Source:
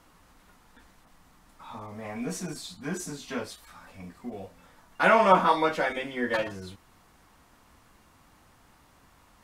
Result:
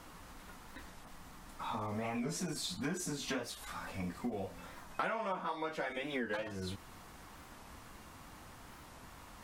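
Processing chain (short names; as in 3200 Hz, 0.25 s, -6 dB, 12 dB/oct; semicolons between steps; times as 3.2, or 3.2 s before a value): compressor 12:1, threshold -40 dBFS, peak gain reduction 26.5 dB; record warp 45 rpm, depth 160 cents; gain +5.5 dB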